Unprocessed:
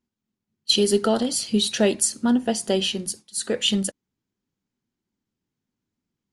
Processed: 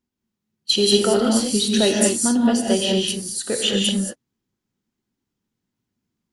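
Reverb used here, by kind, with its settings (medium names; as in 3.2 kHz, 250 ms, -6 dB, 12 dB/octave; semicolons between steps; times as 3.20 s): gated-style reverb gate 250 ms rising, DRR -0.5 dB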